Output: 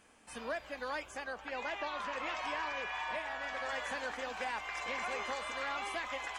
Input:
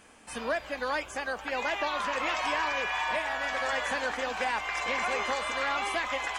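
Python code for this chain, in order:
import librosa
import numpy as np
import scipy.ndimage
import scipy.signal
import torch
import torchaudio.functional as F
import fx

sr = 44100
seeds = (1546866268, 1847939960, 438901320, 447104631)

y = fx.high_shelf(x, sr, hz=8100.0, db=-9.0, at=(1.24, 3.7))
y = F.gain(torch.from_numpy(y), -8.0).numpy()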